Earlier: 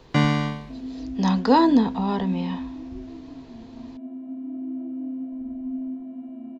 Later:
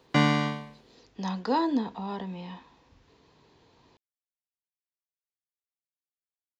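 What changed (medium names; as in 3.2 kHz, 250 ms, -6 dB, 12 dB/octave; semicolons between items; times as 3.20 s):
speech -8.0 dB; second sound: muted; master: add high-pass 210 Hz 6 dB/octave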